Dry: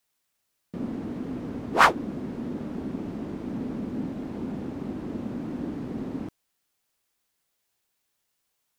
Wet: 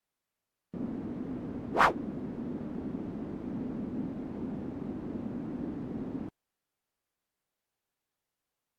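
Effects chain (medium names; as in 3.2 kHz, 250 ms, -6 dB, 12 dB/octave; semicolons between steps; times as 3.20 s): treble shelf 2.2 kHz -10 dB; trim -4 dB; AAC 64 kbps 44.1 kHz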